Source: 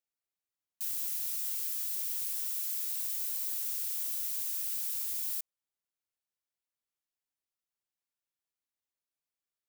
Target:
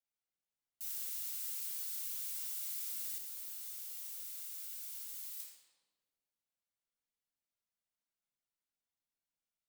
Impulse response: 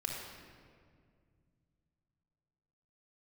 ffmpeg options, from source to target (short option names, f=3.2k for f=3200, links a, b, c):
-filter_complex "[1:a]atrim=start_sample=2205,asetrate=74970,aresample=44100[a];[0:a][a]afir=irnorm=-1:irlink=0,asettb=1/sr,asplit=3[b][c][d];[b]atrim=end=3.184[e];[c]atrim=start=3.18:end=5.4,asetpts=PTS-STARTPTS,afade=t=in:d=0.004:c=qsin,afade=t=out:st=2.216:d=0.004:c=qsin,flanger=delay=7:depth=1:regen=77:speed=1.2:shape=triangular[f];[d]atrim=start=5.396[g];[e][f]acrossfade=d=0.004:c1=hsin:c2=qsin[h];[h][g]acrossfade=d=0.004:c1=qsin:c2=hsin,volume=-1dB"